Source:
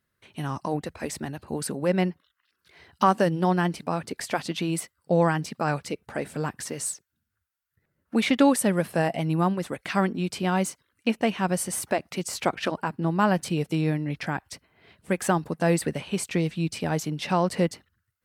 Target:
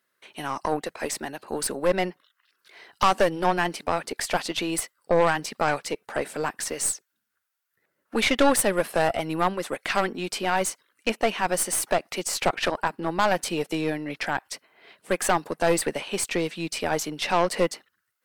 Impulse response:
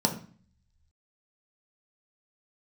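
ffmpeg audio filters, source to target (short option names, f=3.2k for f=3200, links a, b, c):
-af "highpass=400,aeval=exprs='0.398*(cos(1*acos(clip(val(0)/0.398,-1,1)))-cos(1*PI/2))+0.0501*(cos(4*acos(clip(val(0)/0.398,-1,1)))-cos(4*PI/2))+0.0631*(cos(5*acos(clip(val(0)/0.398,-1,1)))-cos(5*PI/2))+0.0282*(cos(8*acos(clip(val(0)/0.398,-1,1)))-cos(8*PI/2))':c=same,volume=10dB,asoftclip=hard,volume=-10dB"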